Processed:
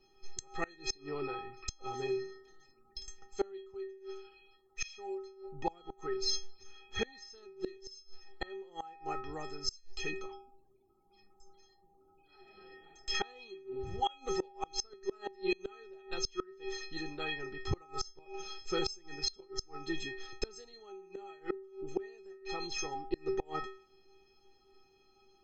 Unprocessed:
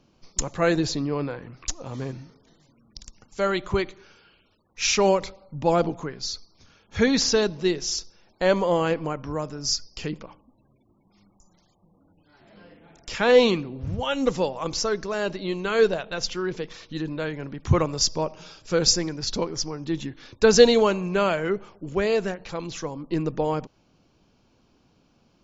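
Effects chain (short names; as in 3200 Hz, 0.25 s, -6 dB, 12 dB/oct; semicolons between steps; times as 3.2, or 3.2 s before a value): metallic resonator 380 Hz, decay 0.57 s, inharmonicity 0.03; flipped gate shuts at -38 dBFS, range -27 dB; gain +17.5 dB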